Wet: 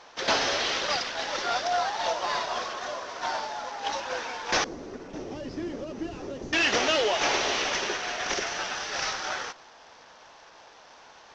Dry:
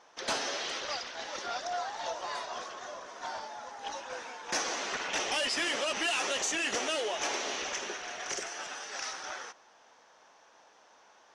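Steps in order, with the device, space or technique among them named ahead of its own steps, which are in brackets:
early wireless headset (high-pass filter 170 Hz 12 dB per octave; variable-slope delta modulation 32 kbit/s)
0:04.64–0:06.53: drawn EQ curve 330 Hz 0 dB, 760 Hz −17 dB, 3,000 Hz −29 dB, 11,000 Hz −16 dB
level +8.5 dB

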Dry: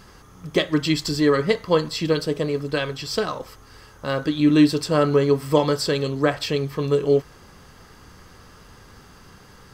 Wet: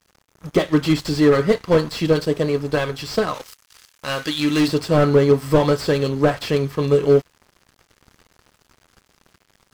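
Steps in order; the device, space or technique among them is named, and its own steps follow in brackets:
early transistor amplifier (dead-zone distortion −42.5 dBFS; slew-rate limiting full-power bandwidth 100 Hz)
noise gate with hold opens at −50 dBFS
0:03.34–0:04.68: tilt shelving filter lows −8.5 dB, about 1,300 Hz
level +4.5 dB

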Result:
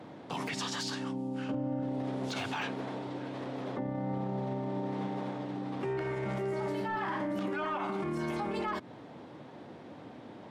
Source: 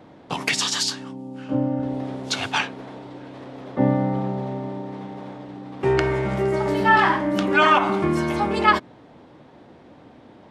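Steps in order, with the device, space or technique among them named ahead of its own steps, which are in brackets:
podcast mastering chain (high-pass filter 92 Hz 24 dB per octave; de-essing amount 95%; downward compressor 4 to 1, threshold −26 dBFS, peak gain reduction 10.5 dB; brickwall limiter −26 dBFS, peak gain reduction 9.5 dB; MP3 96 kbit/s 48,000 Hz)

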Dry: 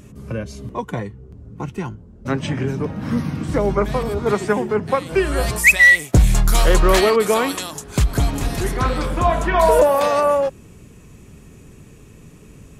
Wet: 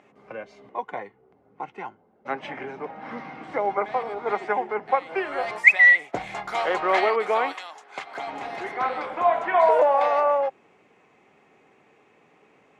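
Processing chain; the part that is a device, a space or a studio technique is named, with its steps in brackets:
0:07.52–0:08.26: high-pass filter 1,400 Hz → 510 Hz 6 dB per octave
tin-can telephone (band-pass filter 530–2,400 Hz; hollow resonant body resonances 780/2,100 Hz, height 11 dB, ringing for 30 ms)
level −4 dB

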